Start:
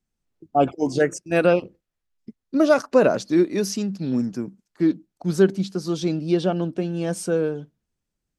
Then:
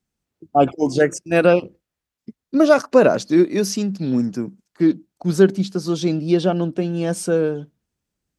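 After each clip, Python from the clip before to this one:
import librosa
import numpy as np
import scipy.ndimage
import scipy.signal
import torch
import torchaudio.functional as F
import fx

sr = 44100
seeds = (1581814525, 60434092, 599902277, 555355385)

y = scipy.signal.sosfilt(scipy.signal.butter(2, 45.0, 'highpass', fs=sr, output='sos'), x)
y = y * librosa.db_to_amplitude(3.5)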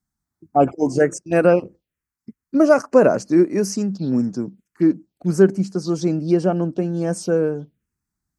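y = fx.env_phaser(x, sr, low_hz=490.0, high_hz=3600.0, full_db=-18.0)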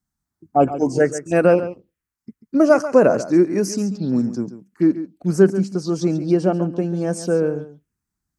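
y = x + 10.0 ** (-13.0 / 20.0) * np.pad(x, (int(139 * sr / 1000.0), 0))[:len(x)]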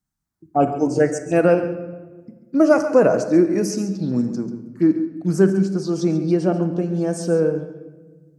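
y = fx.room_shoebox(x, sr, seeds[0], volume_m3=1100.0, walls='mixed', distance_m=0.6)
y = y * librosa.db_to_amplitude(-1.5)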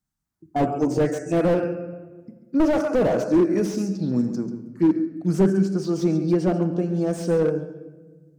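y = fx.slew_limit(x, sr, full_power_hz=84.0)
y = y * librosa.db_to_amplitude(-1.5)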